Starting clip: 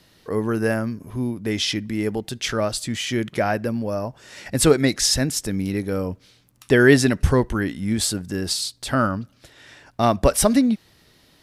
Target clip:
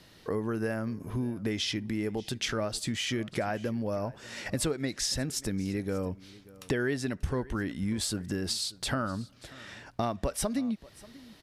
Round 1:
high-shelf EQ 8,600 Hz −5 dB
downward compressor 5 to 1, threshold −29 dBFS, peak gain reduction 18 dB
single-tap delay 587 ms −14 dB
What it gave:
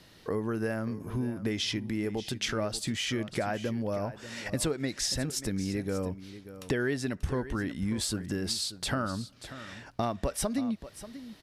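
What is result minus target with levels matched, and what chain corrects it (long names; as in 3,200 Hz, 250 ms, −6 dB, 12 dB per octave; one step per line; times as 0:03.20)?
echo-to-direct +7 dB
high-shelf EQ 8,600 Hz −5 dB
downward compressor 5 to 1, threshold −29 dBFS, peak gain reduction 18 dB
single-tap delay 587 ms −21 dB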